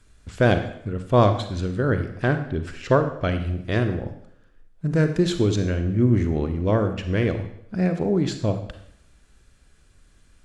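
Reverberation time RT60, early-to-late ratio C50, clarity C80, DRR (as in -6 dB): 0.70 s, 9.0 dB, 11.5 dB, 7.5 dB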